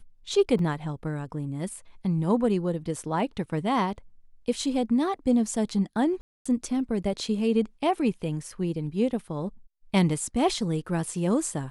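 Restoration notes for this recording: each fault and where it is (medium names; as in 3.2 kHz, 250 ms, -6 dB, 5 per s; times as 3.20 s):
0.59 s: dropout 2.1 ms
6.21–6.46 s: dropout 245 ms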